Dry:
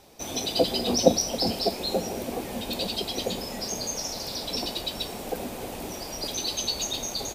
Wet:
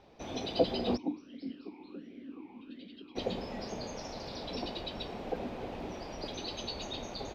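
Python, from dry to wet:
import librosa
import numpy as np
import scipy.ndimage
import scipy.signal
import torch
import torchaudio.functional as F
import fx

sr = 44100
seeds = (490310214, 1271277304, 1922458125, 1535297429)

y = fx.air_absorb(x, sr, metres=250.0)
y = fx.vowel_sweep(y, sr, vowels='i-u', hz=1.4, at=(0.96, 3.15), fade=0.02)
y = F.gain(torch.from_numpy(y), -3.5).numpy()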